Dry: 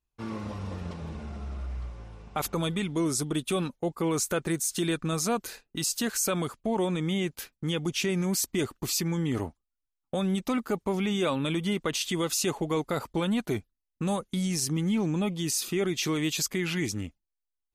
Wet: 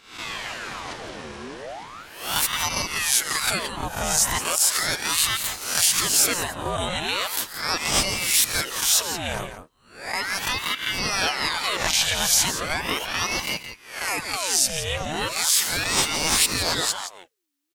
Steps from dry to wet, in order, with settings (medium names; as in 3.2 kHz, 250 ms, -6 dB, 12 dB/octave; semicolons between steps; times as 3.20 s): reverse spectral sustain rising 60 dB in 0.53 s; tilt shelf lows -8.5 dB, about 770 Hz; in parallel at +1.5 dB: compression, threshold -31 dBFS, peak gain reduction 15.5 dB; on the sum: echo from a far wall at 29 m, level -9 dB; ring modulator with a swept carrier 1.4 kHz, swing 80%, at 0.37 Hz; trim +1 dB